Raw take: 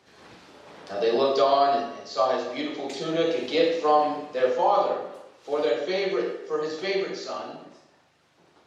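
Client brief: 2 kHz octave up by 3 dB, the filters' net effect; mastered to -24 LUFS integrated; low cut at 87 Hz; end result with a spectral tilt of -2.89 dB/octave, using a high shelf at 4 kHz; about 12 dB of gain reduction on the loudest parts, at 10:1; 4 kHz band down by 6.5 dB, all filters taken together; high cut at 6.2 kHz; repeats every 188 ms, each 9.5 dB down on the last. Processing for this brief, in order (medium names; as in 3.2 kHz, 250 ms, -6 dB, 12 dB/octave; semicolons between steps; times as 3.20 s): high-pass 87 Hz; low-pass 6.2 kHz; peaking EQ 2 kHz +6.5 dB; treble shelf 4 kHz -4 dB; peaking EQ 4 kHz -7.5 dB; compression 10:1, threshold -28 dBFS; feedback delay 188 ms, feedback 33%, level -9.5 dB; trim +8.5 dB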